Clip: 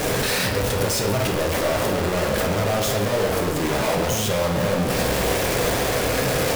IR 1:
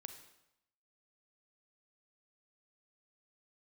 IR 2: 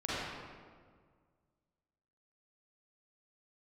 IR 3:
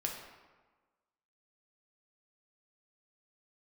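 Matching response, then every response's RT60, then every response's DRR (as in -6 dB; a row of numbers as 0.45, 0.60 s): 3; 0.85, 1.8, 1.3 s; 7.0, -10.0, 0.0 dB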